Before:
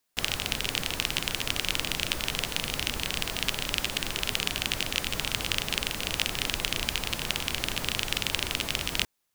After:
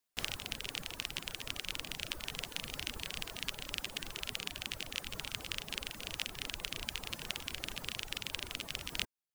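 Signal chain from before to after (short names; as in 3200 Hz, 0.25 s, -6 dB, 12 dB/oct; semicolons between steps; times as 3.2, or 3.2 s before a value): vocal rider 0.5 s; reverb removal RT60 1.5 s; gain -9 dB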